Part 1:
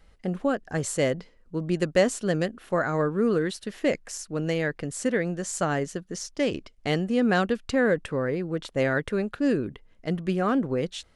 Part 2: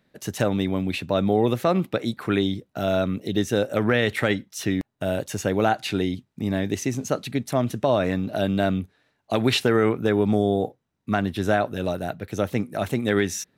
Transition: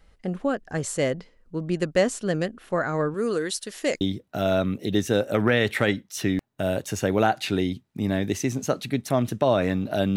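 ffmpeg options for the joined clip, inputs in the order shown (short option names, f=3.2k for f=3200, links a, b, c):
-filter_complex "[0:a]asettb=1/sr,asplit=3[a][b][c];[a]atrim=end=3.144[d];[b]atrim=start=3.14:end=4.01,asetpts=PTS-STARTPTS,afade=t=in:d=0.004:c=qsin,afade=t=out:st=0.866:d=0.004:c=qsin,bass=f=250:g=-9,treble=f=4k:g=12[e];[c]atrim=start=4.006[f];[d][e]acrossfade=d=0.004:c1=hsin:c2=qsin[g];[g][f]acrossfade=d=0.004:c1=qsin:c2=hsin,apad=whole_dur=10.16,atrim=end=10.16,atrim=end=4.012[h];[1:a]atrim=start=2.428:end=8.58[i];[h][i]acrossfade=d=0.004:c1=hsin:c2=hsin"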